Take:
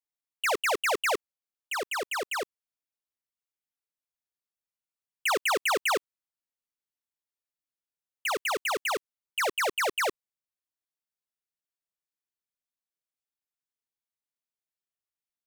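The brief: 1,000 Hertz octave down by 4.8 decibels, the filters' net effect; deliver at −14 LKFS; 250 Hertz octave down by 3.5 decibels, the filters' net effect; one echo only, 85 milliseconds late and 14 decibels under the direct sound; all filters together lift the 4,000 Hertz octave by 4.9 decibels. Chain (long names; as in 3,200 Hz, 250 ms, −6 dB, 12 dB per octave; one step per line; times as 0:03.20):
parametric band 250 Hz −5.5 dB
parametric band 1,000 Hz −6.5 dB
parametric band 4,000 Hz +7.5 dB
single-tap delay 85 ms −14 dB
level +14 dB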